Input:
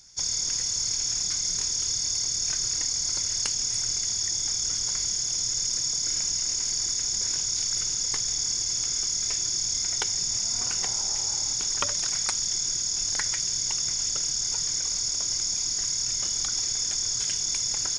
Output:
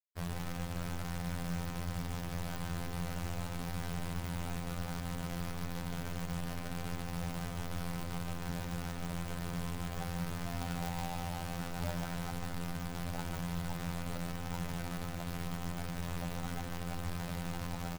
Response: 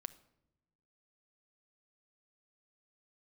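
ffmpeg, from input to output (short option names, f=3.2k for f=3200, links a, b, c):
-af "afftfilt=real='re*lt(hypot(re,im),0.126)':imag='im*lt(hypot(re,im),0.126)':win_size=1024:overlap=0.75,lowpass=f=1.1k:w=0.5412,lowpass=f=1.1k:w=1.3066,equalizer=f=160:t=o:w=1.5:g=13,aecho=1:1:1.4:0.72,alimiter=level_in=6.5dB:limit=-24dB:level=0:latency=1:release=23,volume=-6.5dB,areverse,acompressor=mode=upward:threshold=-49dB:ratio=2.5,areverse,aeval=exprs='val(0)+0.000794*(sin(2*PI*50*n/s)+sin(2*PI*2*50*n/s)/2+sin(2*PI*3*50*n/s)/3+sin(2*PI*4*50*n/s)/4+sin(2*PI*5*50*n/s)/5)':c=same,acrusher=bits=6:mix=0:aa=0.000001,afftfilt=real='hypot(re,im)*cos(PI*b)':imag='0':win_size=2048:overlap=0.75,acrusher=bits=4:mode=log:mix=0:aa=0.000001,aecho=1:1:147:0.398,volume=3dB"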